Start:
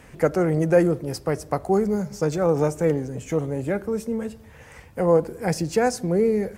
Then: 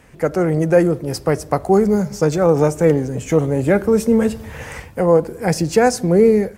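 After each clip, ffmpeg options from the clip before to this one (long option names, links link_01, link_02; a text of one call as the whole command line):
ffmpeg -i in.wav -af "dynaudnorm=framelen=110:gausssize=5:maxgain=16dB,volume=-1dB" out.wav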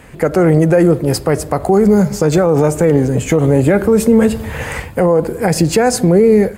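ffmpeg -i in.wav -af "equalizer=frequency=5700:width=5.7:gain=-8.5,alimiter=limit=-11.5dB:level=0:latency=1:release=74,volume=9dB" out.wav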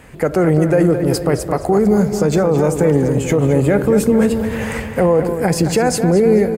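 ffmpeg -i in.wav -filter_complex "[0:a]asplit=2[link_01][link_02];[link_02]adelay=218,lowpass=frequency=3900:poles=1,volume=-8.5dB,asplit=2[link_03][link_04];[link_04]adelay=218,lowpass=frequency=3900:poles=1,volume=0.54,asplit=2[link_05][link_06];[link_06]adelay=218,lowpass=frequency=3900:poles=1,volume=0.54,asplit=2[link_07][link_08];[link_08]adelay=218,lowpass=frequency=3900:poles=1,volume=0.54,asplit=2[link_09][link_10];[link_10]adelay=218,lowpass=frequency=3900:poles=1,volume=0.54,asplit=2[link_11][link_12];[link_12]adelay=218,lowpass=frequency=3900:poles=1,volume=0.54[link_13];[link_03][link_05][link_07][link_09][link_11][link_13]amix=inputs=6:normalize=0[link_14];[link_01][link_14]amix=inputs=2:normalize=0,dynaudnorm=framelen=280:gausssize=3:maxgain=11.5dB,volume=-2.5dB" out.wav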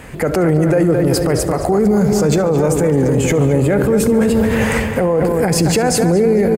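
ffmpeg -i in.wav -af "alimiter=limit=-13.5dB:level=0:latency=1:release=31,aecho=1:1:71|142|213|284|355:0.112|0.0673|0.0404|0.0242|0.0145,volume=7dB" out.wav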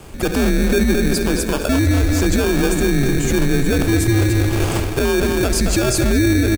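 ffmpeg -i in.wav -filter_complex "[0:a]afreqshift=-120,acrossover=split=2600[link_01][link_02];[link_01]acrusher=samples=22:mix=1:aa=0.000001[link_03];[link_03][link_02]amix=inputs=2:normalize=0,volume=-2dB" out.wav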